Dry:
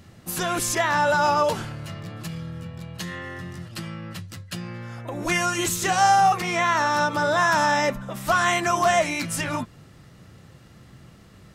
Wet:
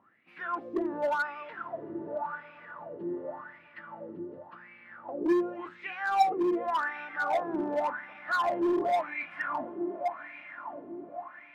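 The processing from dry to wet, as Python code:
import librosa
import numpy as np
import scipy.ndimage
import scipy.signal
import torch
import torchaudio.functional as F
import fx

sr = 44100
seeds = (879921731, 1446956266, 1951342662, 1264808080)

p1 = fx.peak_eq(x, sr, hz=270.0, db=13.0, octaves=1.2)
p2 = fx.hum_notches(p1, sr, base_hz=60, count=6)
p3 = p2 + fx.echo_diffused(p2, sr, ms=1103, feedback_pct=47, wet_db=-9.0, dry=0)
p4 = fx.wah_lfo(p3, sr, hz=0.89, low_hz=350.0, high_hz=2400.0, q=9.5)
p5 = fx.air_absorb(p4, sr, metres=410.0)
p6 = 10.0 ** (-29.0 / 20.0) * (np.abs((p5 / 10.0 ** (-29.0 / 20.0) + 3.0) % 4.0 - 2.0) - 1.0)
y = p5 + (p6 * librosa.db_to_amplitude(-3.5))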